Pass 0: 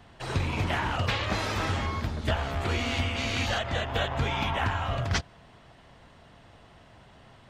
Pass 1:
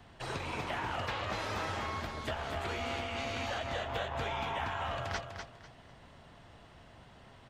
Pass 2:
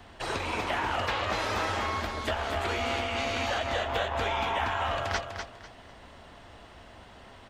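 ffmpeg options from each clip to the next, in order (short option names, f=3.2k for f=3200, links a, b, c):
-filter_complex "[0:a]acrossover=split=380|1500[a][b][c];[a]acompressor=threshold=-41dB:ratio=4[d];[b]acompressor=threshold=-33dB:ratio=4[e];[c]acompressor=threshold=-40dB:ratio=4[f];[d][e][f]amix=inputs=3:normalize=0,aecho=1:1:248|496|744:0.447|0.116|0.0302,volume=-3dB"
-af "equalizer=f=140:w=2.2:g=-11,volume=7dB"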